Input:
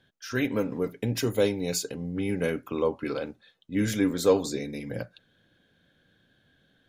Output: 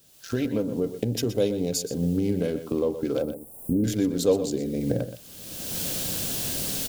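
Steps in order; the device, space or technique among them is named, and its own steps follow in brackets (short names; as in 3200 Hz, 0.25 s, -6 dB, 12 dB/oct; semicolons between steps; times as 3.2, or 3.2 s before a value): Wiener smoothing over 15 samples; cheap recorder with automatic gain (white noise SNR 30 dB; recorder AGC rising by 33 dB/s); 3.22–3.84 inverse Chebyshev band-stop 2100–4700 Hz, stop band 60 dB; band shelf 1400 Hz -9 dB; outdoor echo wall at 21 m, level -11 dB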